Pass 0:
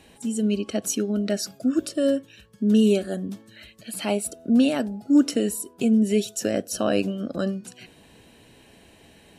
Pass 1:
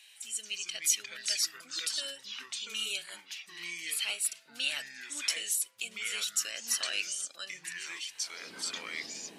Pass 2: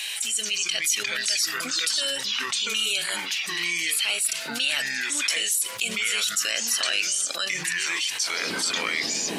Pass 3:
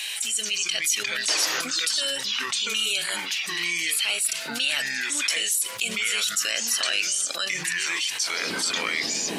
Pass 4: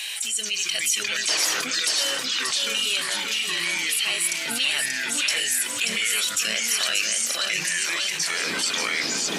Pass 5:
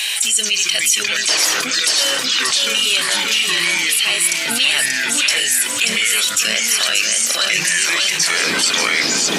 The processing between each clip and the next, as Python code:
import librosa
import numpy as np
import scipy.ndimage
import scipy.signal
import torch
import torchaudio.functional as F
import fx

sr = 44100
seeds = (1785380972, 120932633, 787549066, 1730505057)

y1 = fx.filter_sweep_highpass(x, sr, from_hz=2700.0, to_hz=250.0, start_s=8.04, end_s=8.54, q=1.2)
y1 = fx.echo_pitch(y1, sr, ms=174, semitones=-4, count=3, db_per_echo=-6.0)
y2 = fx.env_flatten(y1, sr, amount_pct=70)
y2 = y2 * librosa.db_to_amplitude(2.0)
y3 = fx.spec_paint(y2, sr, seeds[0], shape='noise', start_s=1.28, length_s=0.34, low_hz=280.0, high_hz=6900.0, level_db=-29.0)
y4 = fx.echo_feedback(y3, sr, ms=583, feedback_pct=37, wet_db=-4.5)
y5 = fx.rider(y4, sr, range_db=10, speed_s=0.5)
y5 = y5 * librosa.db_to_amplitude(8.0)